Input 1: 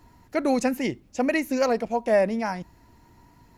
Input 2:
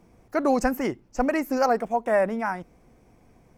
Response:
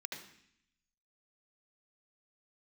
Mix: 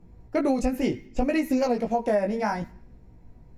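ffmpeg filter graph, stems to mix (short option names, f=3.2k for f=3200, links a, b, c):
-filter_complex "[0:a]volume=2.5dB,asplit=2[a][b];[b]volume=-14dB[c];[1:a]aemphasis=mode=reproduction:type=riaa,bandreject=f=1.1k:w=16,volume=-3dB,asplit=2[d][e];[e]apad=whole_len=157617[f];[a][f]sidechaingate=range=-33dB:threshold=-38dB:ratio=16:detection=peak[g];[2:a]atrim=start_sample=2205[h];[c][h]afir=irnorm=-1:irlink=0[i];[g][d][i]amix=inputs=3:normalize=0,flanger=delay=16:depth=3.7:speed=0.66,acompressor=threshold=-20dB:ratio=6"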